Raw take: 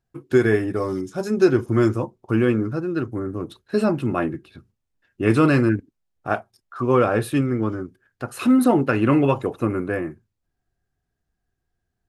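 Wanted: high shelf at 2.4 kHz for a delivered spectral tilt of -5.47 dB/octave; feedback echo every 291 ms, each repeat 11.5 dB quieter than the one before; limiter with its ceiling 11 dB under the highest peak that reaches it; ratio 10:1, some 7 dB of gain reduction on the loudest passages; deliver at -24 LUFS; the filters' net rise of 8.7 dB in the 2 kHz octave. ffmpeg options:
-af "equalizer=f=2000:t=o:g=8.5,highshelf=f=2400:g=7,acompressor=threshold=0.141:ratio=10,alimiter=limit=0.15:level=0:latency=1,aecho=1:1:291|582|873:0.266|0.0718|0.0194,volume=1.41"

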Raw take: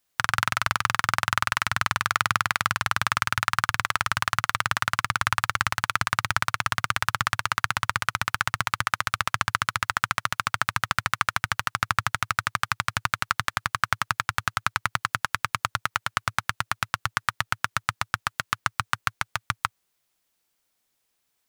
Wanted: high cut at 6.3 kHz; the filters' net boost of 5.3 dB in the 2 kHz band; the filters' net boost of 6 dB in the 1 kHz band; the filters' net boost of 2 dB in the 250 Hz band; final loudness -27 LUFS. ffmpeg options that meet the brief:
-af "lowpass=6300,equalizer=f=250:t=o:g=3,equalizer=f=1000:t=o:g=6,equalizer=f=2000:t=o:g=4.5,volume=0.531"

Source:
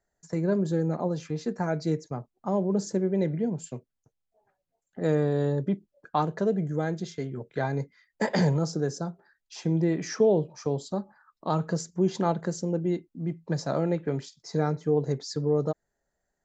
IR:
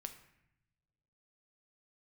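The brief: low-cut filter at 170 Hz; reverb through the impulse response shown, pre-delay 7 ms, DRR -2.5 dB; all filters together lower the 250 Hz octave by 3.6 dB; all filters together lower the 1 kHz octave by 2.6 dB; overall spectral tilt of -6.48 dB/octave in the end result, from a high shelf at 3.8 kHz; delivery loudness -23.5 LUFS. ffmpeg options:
-filter_complex "[0:a]highpass=170,equalizer=f=250:t=o:g=-3,equalizer=f=1000:t=o:g=-3,highshelf=f=3800:g=-4.5,asplit=2[s0][s1];[1:a]atrim=start_sample=2205,adelay=7[s2];[s1][s2]afir=irnorm=-1:irlink=0,volume=2.11[s3];[s0][s3]amix=inputs=2:normalize=0,volume=1.41"

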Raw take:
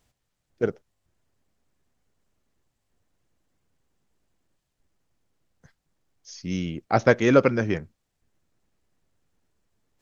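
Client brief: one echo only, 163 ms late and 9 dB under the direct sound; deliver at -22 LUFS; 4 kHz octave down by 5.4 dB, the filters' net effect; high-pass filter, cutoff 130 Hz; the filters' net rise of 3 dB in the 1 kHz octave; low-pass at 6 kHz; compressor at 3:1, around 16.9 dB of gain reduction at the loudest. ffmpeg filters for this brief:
-af "highpass=130,lowpass=6000,equalizer=f=1000:t=o:g=5,equalizer=f=4000:t=o:g=-7,acompressor=threshold=0.0178:ratio=3,aecho=1:1:163:0.355,volume=5.62"

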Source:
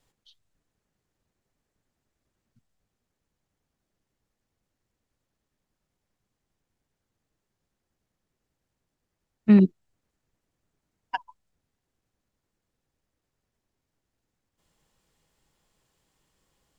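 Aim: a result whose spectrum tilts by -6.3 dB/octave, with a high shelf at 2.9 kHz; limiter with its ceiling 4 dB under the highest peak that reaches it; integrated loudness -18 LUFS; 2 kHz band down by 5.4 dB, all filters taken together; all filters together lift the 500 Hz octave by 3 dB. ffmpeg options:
-af "equalizer=f=500:t=o:g=4.5,equalizer=f=2000:t=o:g=-9,highshelf=f=2900:g=4.5,volume=2.11,alimiter=limit=0.596:level=0:latency=1"

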